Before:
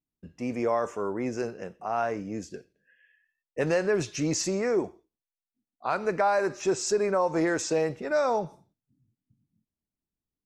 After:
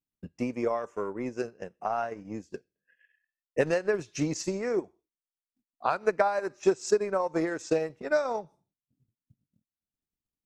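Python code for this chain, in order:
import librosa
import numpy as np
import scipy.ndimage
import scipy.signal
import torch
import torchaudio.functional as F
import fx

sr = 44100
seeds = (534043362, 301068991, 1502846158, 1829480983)

y = fx.transient(x, sr, attack_db=10, sustain_db=-10)
y = y * 10.0 ** (-5.0 / 20.0)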